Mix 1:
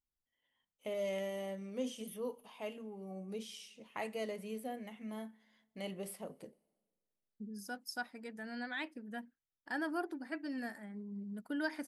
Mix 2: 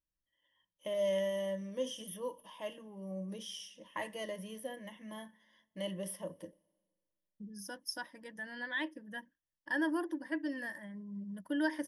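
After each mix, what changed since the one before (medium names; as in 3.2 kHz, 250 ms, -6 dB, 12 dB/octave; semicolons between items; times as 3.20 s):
master: add rippled EQ curve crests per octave 1.2, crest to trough 14 dB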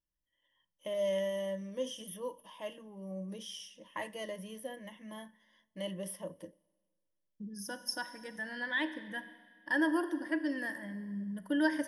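second voice: send on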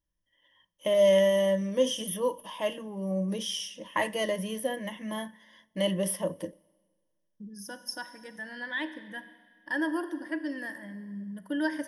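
first voice +11.5 dB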